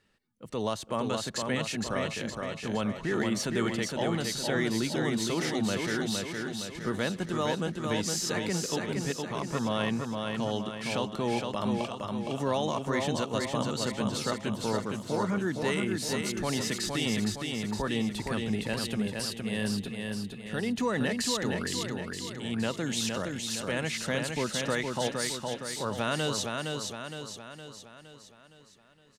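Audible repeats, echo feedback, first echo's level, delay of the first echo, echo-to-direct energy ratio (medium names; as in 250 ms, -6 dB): 6, 52%, -4.0 dB, 464 ms, -2.5 dB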